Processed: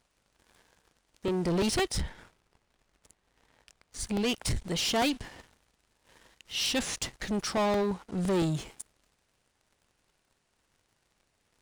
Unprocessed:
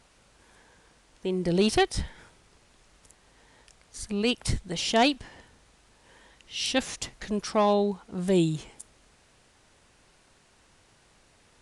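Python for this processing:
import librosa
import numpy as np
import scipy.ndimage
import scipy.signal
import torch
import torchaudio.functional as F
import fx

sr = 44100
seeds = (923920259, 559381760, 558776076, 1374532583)

y = fx.leveller(x, sr, passes=3)
y = fx.high_shelf(y, sr, hz=fx.line((2.0, 3500.0), (3.98, 5300.0)), db=-7.5, at=(2.0, 3.98), fade=0.02)
y = fx.buffer_crackle(y, sr, first_s=0.6, period_s=0.17, block=64, kind='repeat')
y = F.gain(torch.from_numpy(y), -8.5).numpy()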